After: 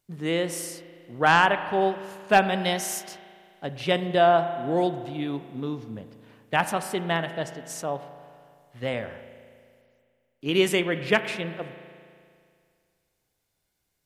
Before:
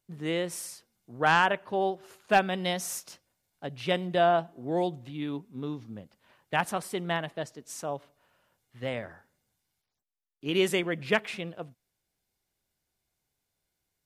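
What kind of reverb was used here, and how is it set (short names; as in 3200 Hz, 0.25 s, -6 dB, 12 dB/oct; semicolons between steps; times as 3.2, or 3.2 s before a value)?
spring tank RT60 2.2 s, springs 36 ms, chirp 60 ms, DRR 10.5 dB; gain +4 dB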